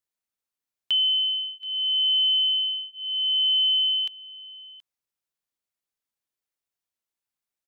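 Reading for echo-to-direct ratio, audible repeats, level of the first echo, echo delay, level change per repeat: -21.0 dB, 1, -21.0 dB, 0.726 s, no steady repeat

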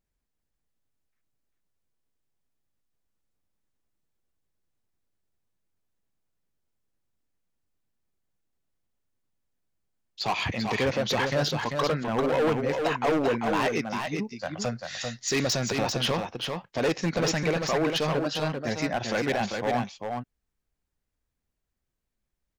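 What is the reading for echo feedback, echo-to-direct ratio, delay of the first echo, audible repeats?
no steady repeat, -5.0 dB, 0.393 s, 1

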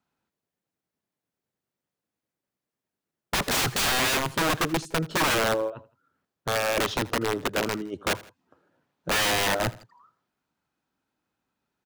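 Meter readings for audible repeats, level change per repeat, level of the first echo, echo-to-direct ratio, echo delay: 2, -6.5 dB, -20.0 dB, -19.0 dB, 81 ms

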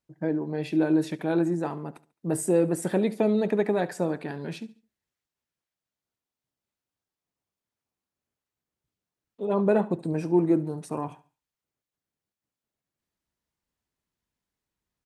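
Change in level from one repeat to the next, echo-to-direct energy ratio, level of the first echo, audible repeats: -9.5 dB, -18.0 dB, -18.5 dB, 2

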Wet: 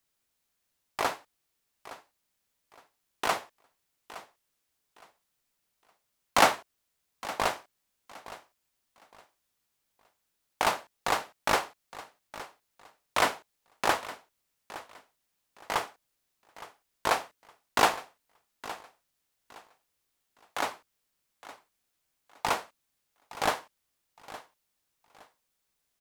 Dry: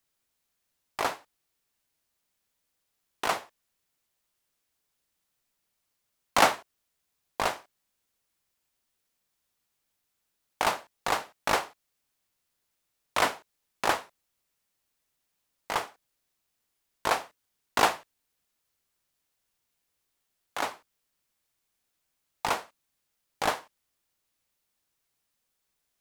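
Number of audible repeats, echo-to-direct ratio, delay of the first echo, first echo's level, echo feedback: 2, -16.0 dB, 0.865 s, -16.5 dB, 26%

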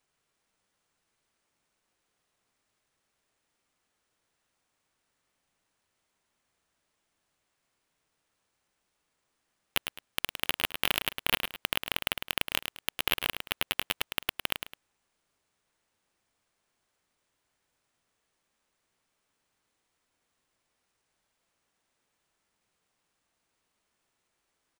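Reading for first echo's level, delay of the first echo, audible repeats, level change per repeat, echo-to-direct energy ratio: -8.0 dB, 0.106 s, 2, -10.0 dB, -7.5 dB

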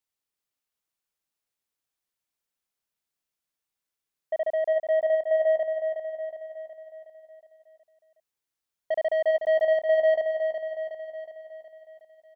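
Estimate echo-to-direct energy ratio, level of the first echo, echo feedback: -5.0 dB, -6.5 dB, 54%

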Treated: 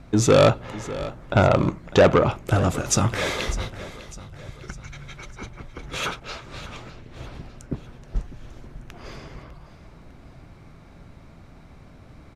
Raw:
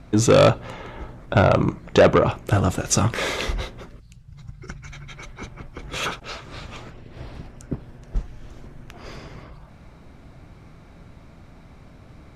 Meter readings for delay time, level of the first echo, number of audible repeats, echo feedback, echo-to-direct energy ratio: 0.602 s, -16.0 dB, 4, 49%, -15.0 dB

